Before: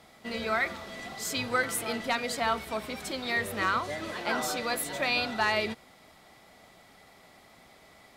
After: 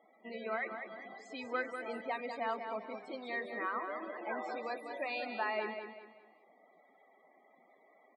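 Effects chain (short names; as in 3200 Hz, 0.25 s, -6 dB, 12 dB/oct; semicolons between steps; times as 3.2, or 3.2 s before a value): HPF 280 Hz 12 dB/oct; notch 1400 Hz, Q 9.9; loudest bins only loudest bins 32; tape spacing loss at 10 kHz 28 dB; on a send: feedback echo 0.196 s, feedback 36%, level -7.5 dB; on the sum: gain -4.5 dB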